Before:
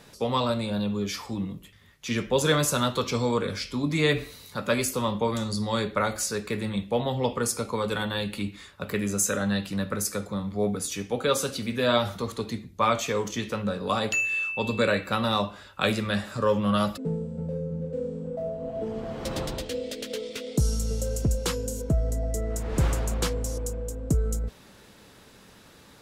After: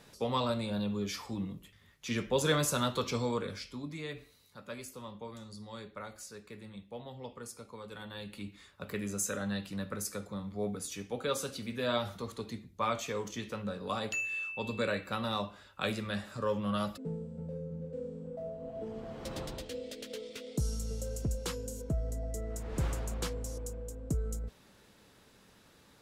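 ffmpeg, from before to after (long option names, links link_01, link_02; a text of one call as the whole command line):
ffmpeg -i in.wav -af "volume=3.5dB,afade=type=out:start_time=3.1:duration=0.94:silence=0.237137,afade=type=in:start_time=7.89:duration=0.95:silence=0.334965" out.wav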